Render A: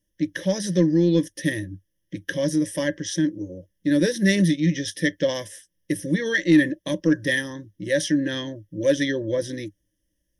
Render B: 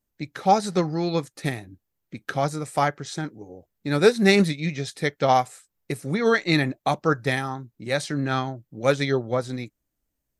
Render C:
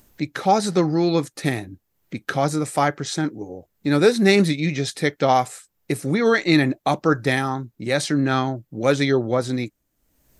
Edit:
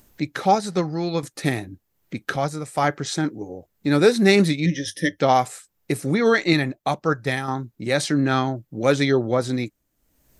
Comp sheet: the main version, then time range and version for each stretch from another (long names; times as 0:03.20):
C
0:00.55–0:01.23: punch in from B
0:02.36–0:02.84: punch in from B
0:04.66–0:05.19: punch in from A
0:06.53–0:07.48: punch in from B